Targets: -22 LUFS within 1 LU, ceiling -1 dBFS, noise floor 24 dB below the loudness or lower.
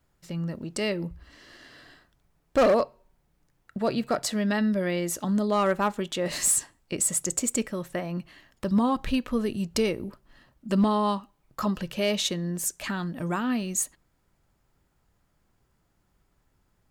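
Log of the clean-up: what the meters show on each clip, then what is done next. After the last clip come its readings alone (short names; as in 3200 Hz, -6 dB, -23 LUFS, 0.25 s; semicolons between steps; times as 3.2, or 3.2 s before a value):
clipped 0.3%; flat tops at -16.0 dBFS; loudness -27.0 LUFS; peak -16.0 dBFS; loudness target -22.0 LUFS
-> clip repair -16 dBFS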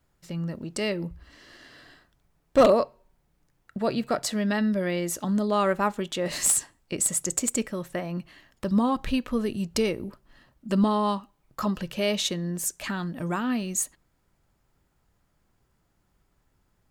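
clipped 0.0%; loudness -26.5 LUFS; peak -7.0 dBFS; loudness target -22.0 LUFS
-> gain +4.5 dB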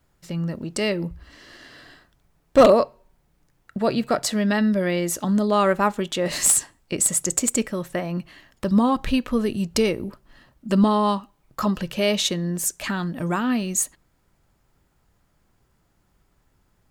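loudness -22.0 LUFS; peak -2.5 dBFS; noise floor -66 dBFS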